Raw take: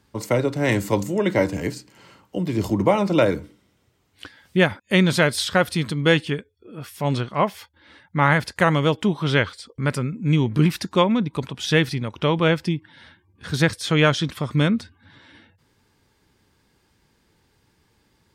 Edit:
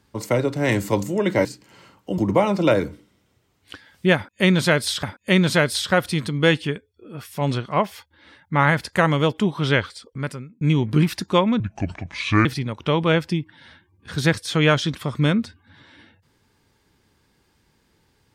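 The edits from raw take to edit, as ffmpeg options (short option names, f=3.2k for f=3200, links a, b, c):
-filter_complex "[0:a]asplit=7[a][b][c][d][e][f][g];[a]atrim=end=1.452[h];[b]atrim=start=1.708:end=2.442[i];[c]atrim=start=2.688:end=5.542[j];[d]atrim=start=4.658:end=10.24,asetpts=PTS-STARTPTS,afade=t=out:st=4.932:d=0.65[k];[e]atrim=start=10.24:end=11.234,asetpts=PTS-STARTPTS,afade=t=in:d=0.004:c=hsin[l];[f]atrim=start=11.23:end=11.81,asetpts=PTS-STARTPTS,asetrate=29988,aresample=44100[m];[g]atrim=start=11.806[n];[h][i]acrossfade=d=0.004:c1=hsin:c2=hsin[o];[o][j]acrossfade=d=0.004:c1=hsin:c2=hsin[p];[k][l]concat=n=2:v=0:a=1[q];[p][q]acrossfade=d=0.004:c1=hsin:c2=hsin[r];[r][m]acrossfade=d=0.004:c1=hsin:c2=hsin[s];[s][n]acrossfade=d=0.004:c1=hsin:c2=hsin"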